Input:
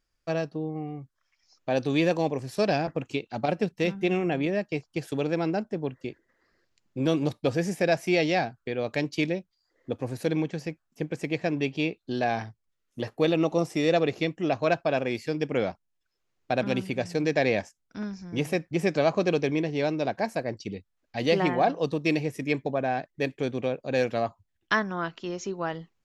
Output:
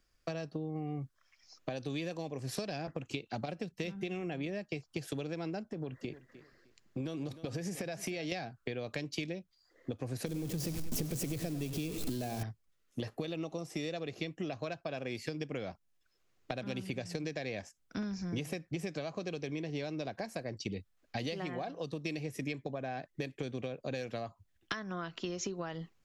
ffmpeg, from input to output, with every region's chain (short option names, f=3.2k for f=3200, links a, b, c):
-filter_complex "[0:a]asettb=1/sr,asplit=3[a][b][c];[a]atrim=end=5.694[d];[b]atrim=start=5.69:end=8.32,asetpts=PTS-STARTPTS,afade=t=in:d=0.004:c=qsin,afade=t=out:st=2.626:d=0.004:c=qsin,acompressor=threshold=-36dB:ratio=5:attack=3.2:release=140:knee=1:detection=peak,aecho=1:1:305|610:0.126|0.029,atrim=end_sample=115983[e];[c]atrim=start=8.316[f];[d][e]acrossfade=d=0.004:c1=hsin:c2=qsin[g];[g][f]acrossfade=d=0.004:c1=qsin:c2=hsin,asettb=1/sr,asplit=3[h][i][j];[h]atrim=end=10.264[k];[i]atrim=start=10.26:end=12.43,asetpts=PTS-STARTPTS,afade=t=in:d=0.004:c=qsin,afade=t=out:st=2.166:d=0.004:c=qsin,aeval=exprs='val(0)+0.5*0.0376*sgn(val(0))':c=same,equalizer=f=1.6k:w=0.41:g=-12.5,aecho=1:1:98|196|294:0.224|0.0761|0.0259,atrim=end_sample=95697[l];[j]atrim=start=12.426[m];[k][l]acrossfade=d=0.004:c1=hsin:c2=qsin[n];[n][m]acrossfade=d=0.004:c1=qsin:c2=hsin,acompressor=threshold=-34dB:ratio=6,bandreject=f=890:w=12,acrossover=split=140|3000[o][p][q];[p]acompressor=threshold=-40dB:ratio=6[r];[o][r][q]amix=inputs=3:normalize=0,volume=4dB"